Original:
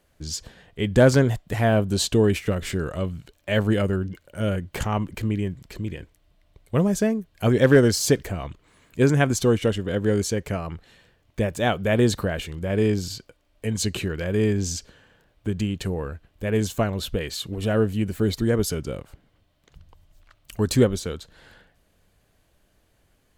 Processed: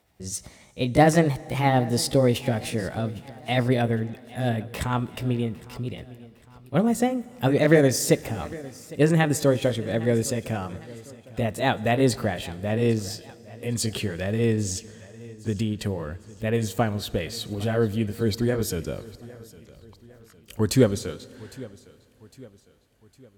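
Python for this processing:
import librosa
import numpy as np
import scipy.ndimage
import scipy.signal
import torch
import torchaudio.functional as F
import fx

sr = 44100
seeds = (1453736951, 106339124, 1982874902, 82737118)

y = fx.pitch_glide(x, sr, semitones=3.5, runs='ending unshifted')
y = scipy.signal.sosfilt(scipy.signal.butter(2, 48.0, 'highpass', fs=sr, output='sos'), y)
y = fx.echo_feedback(y, sr, ms=807, feedback_pct=46, wet_db=-20.0)
y = fx.rev_plate(y, sr, seeds[0], rt60_s=3.0, hf_ratio=0.9, predelay_ms=0, drr_db=19.0)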